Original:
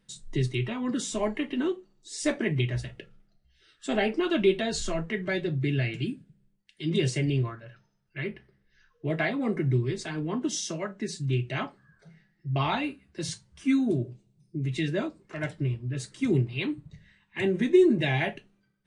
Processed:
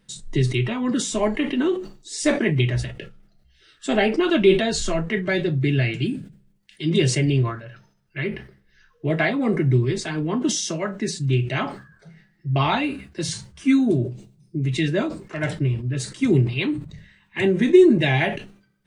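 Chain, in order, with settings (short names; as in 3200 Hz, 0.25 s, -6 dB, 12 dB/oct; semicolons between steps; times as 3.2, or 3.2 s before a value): sustainer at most 110 dB/s; gain +6.5 dB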